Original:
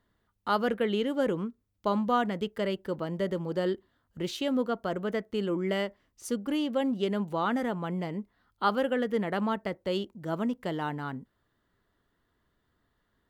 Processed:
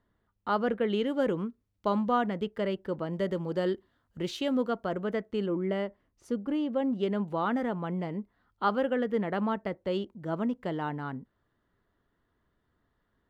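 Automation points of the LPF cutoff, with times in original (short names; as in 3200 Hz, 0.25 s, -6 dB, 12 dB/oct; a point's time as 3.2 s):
LPF 6 dB/oct
1800 Hz
from 0.9 s 4400 Hz
from 2.09 s 2500 Hz
from 3.13 s 6300 Hz
from 4.84 s 2800 Hz
from 5.46 s 1100 Hz
from 6.93 s 2200 Hz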